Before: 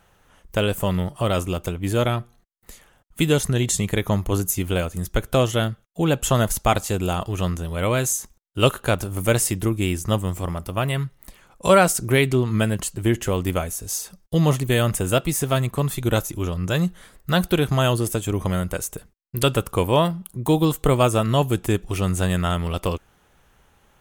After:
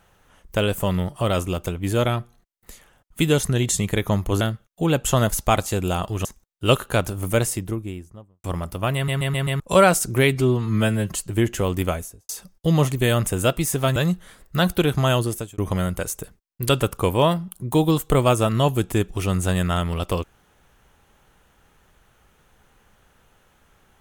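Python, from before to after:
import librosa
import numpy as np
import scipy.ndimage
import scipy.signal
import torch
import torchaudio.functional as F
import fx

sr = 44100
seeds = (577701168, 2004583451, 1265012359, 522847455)

y = fx.studio_fade_out(x, sr, start_s=9.07, length_s=1.31)
y = fx.studio_fade_out(y, sr, start_s=13.61, length_s=0.36)
y = fx.edit(y, sr, fx.cut(start_s=4.41, length_s=1.18),
    fx.cut(start_s=7.43, length_s=0.76),
    fx.stutter_over(start_s=10.89, slice_s=0.13, count=5),
    fx.stretch_span(start_s=12.29, length_s=0.52, factor=1.5),
    fx.cut(start_s=15.64, length_s=1.06),
    fx.fade_out_span(start_s=17.82, length_s=0.5, curve='qsin'), tone=tone)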